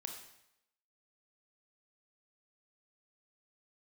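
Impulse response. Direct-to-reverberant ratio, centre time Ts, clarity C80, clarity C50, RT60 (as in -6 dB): 2.5 dB, 29 ms, 8.0 dB, 5.5 dB, 0.80 s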